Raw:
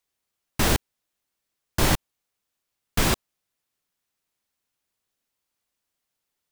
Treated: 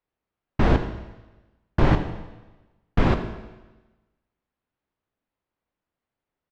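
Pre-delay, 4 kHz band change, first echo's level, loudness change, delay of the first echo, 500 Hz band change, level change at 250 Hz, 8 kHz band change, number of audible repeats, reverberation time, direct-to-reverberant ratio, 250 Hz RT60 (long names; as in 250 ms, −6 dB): 19 ms, −10.5 dB, −15.5 dB, 0.0 dB, 81 ms, +3.5 dB, +4.5 dB, below −25 dB, 1, 1.1 s, 7.5 dB, 1.2 s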